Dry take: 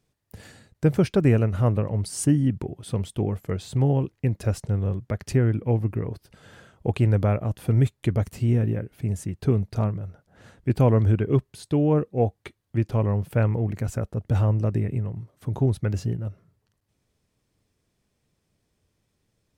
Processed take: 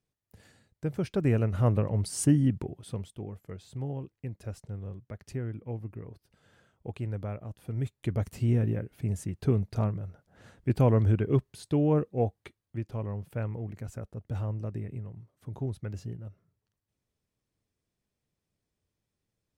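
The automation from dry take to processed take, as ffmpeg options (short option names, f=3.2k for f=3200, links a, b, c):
-af "volume=7.5dB,afade=t=in:st=0.94:d=0.81:silence=0.334965,afade=t=out:st=2.45:d=0.71:silence=0.266073,afade=t=in:st=7.73:d=0.65:silence=0.316228,afade=t=out:st=12.03:d=0.79:silence=0.421697"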